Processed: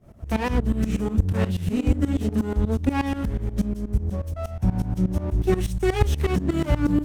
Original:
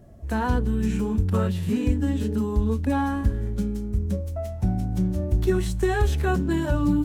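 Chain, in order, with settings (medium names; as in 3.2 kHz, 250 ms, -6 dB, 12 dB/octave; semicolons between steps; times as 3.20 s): comb filter that takes the minimum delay 0.34 ms; tremolo saw up 8.3 Hz, depth 90%; trim +5 dB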